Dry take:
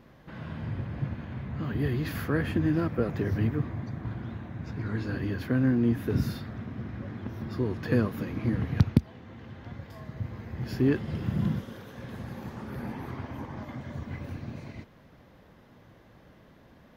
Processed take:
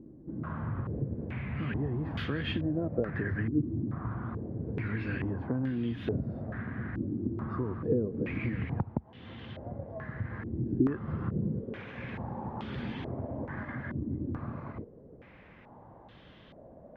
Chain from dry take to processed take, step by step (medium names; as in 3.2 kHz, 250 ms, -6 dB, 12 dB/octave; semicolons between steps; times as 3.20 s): dynamic bell 800 Hz, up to -5 dB, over -46 dBFS, Q 0.94; compression 6:1, threshold -29 dBFS, peak gain reduction 14 dB; step-sequenced low-pass 2.3 Hz 320–3300 Hz